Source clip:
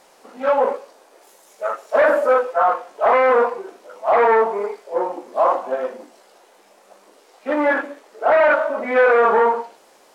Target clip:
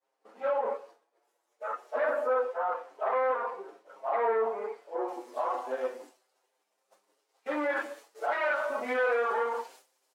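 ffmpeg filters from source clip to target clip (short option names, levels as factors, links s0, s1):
-filter_complex "[0:a]equalizer=f=620:t=o:w=0.21:g=-3.5,agate=range=0.0224:threshold=0.01:ratio=3:detection=peak,asetnsamples=n=441:p=0,asendcmd='5.08 highshelf g 4.5;7.76 highshelf g 10.5',highshelf=f=3300:g=-9.5,alimiter=limit=0.188:level=0:latency=1:release=37,highpass=310,asplit=2[s0][s1];[s1]adelay=7.1,afreqshift=0.28[s2];[s0][s2]amix=inputs=2:normalize=1,volume=0.596"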